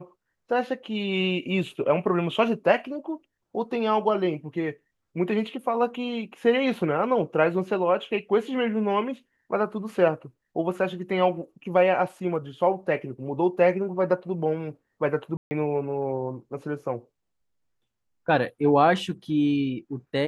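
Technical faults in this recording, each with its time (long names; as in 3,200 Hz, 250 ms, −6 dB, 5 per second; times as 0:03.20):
0:15.37–0:15.51: drop-out 140 ms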